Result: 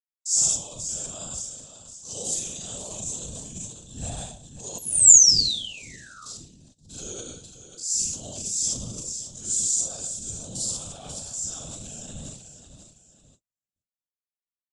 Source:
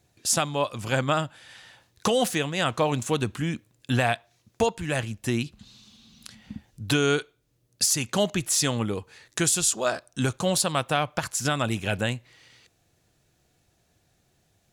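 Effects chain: spectrogram pixelated in time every 50 ms; feedback delay 541 ms, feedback 40%, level -11 dB; Schroeder reverb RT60 0.65 s, combs from 33 ms, DRR -5 dB; 4.78–6.26 s: painted sound fall 1.2–12 kHz -16 dBFS; feedback comb 120 Hz, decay 0.36 s, harmonics all, mix 60%; gate -47 dBFS, range -47 dB; peaking EQ 7.5 kHz +8.5 dB 2 oct, from 6.37 s +2 dB; transient shaper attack -8 dB, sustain +9 dB; whisper effect; FFT filter 120 Hz 0 dB, 230 Hz -4 dB, 370 Hz -8 dB, 610 Hz -6 dB, 2.1 kHz -20 dB, 3.5 kHz -2 dB, 7.5 kHz +14 dB, 15 kHz -28 dB; trim -10 dB

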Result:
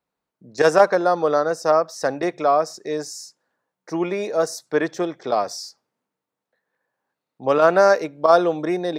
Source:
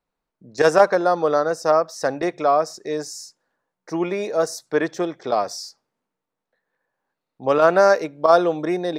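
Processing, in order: high-pass 76 Hz

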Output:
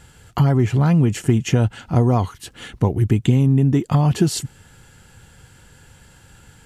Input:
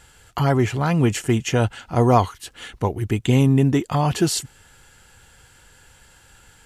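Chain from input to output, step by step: peaking EQ 150 Hz +10.5 dB 2.5 oct; compression 6:1, threshold -12 dBFS, peak gain reduction 9 dB

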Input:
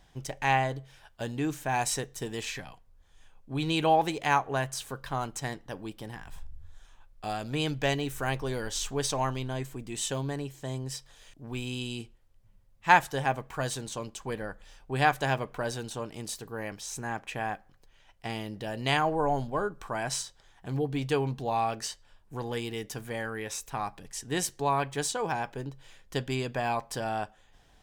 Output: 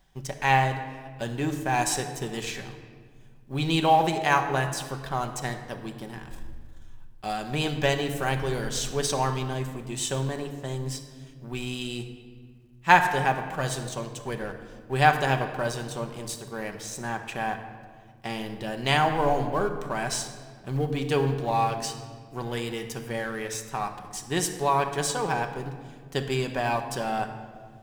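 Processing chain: companding laws mixed up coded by A; simulated room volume 2400 m³, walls mixed, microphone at 1.1 m; trim +3.5 dB

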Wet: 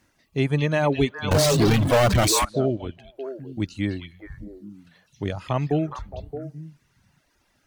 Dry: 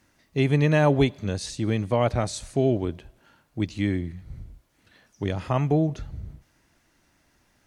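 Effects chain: repeats whose band climbs or falls 207 ms, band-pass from 3.4 kHz, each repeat -1.4 oct, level -1.5 dB; 1.31–2.45 s: power-law waveshaper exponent 0.35; reverb removal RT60 0.86 s

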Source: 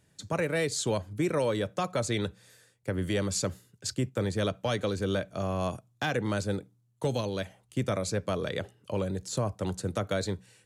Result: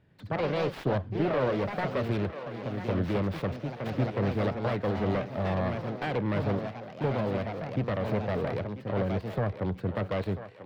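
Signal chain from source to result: self-modulated delay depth 0.4 ms; in parallel at -3.5 dB: hard clipper -31 dBFS, distortion -8 dB; on the sum: distance through air 390 m; on a send: thinning echo 991 ms, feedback 45%, high-pass 410 Hz, level -10 dB; on the sum: ever faster or slower copies 88 ms, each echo +2 st, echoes 2, each echo -6 dB; trim -1 dB

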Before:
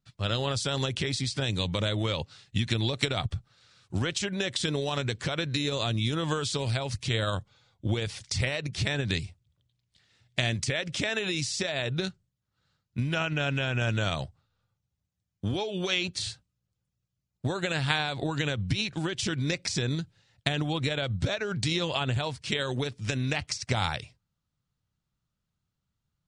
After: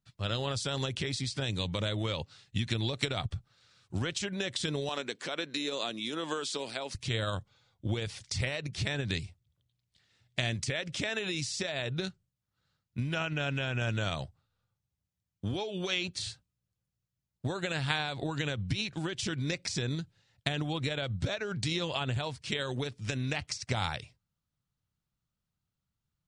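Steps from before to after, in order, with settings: 4.89–6.95 s: high-pass 230 Hz 24 dB/octave; trim -4 dB

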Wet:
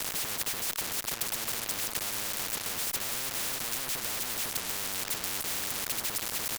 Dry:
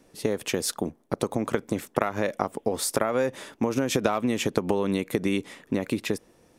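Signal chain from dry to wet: companding laws mixed up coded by mu; band-stop 1.3 kHz; de-hum 112.5 Hz, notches 5; on a send: feedback delay 297 ms, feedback 40%, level -19 dB; on the sum: compression 6:1, threshold -34 dBFS, peak gain reduction 15.5 dB; in parallel at -4 dB: fuzz box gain 57 dB, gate -48 dBFS; on the sum: spectrum-flattening compressor 10:1; trim -1 dB

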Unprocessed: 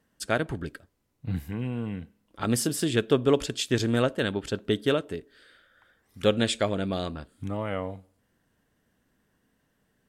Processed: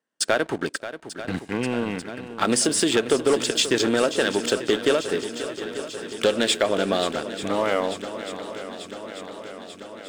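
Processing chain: steep low-pass 10 kHz 96 dB/octave; gate -53 dBFS, range -12 dB; high-pass 330 Hz 12 dB/octave; waveshaping leveller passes 2; compression 3:1, threshold -25 dBFS, peak gain reduction 9 dB; shuffle delay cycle 890 ms, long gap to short 1.5:1, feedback 67%, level -12.5 dB; trim +6 dB

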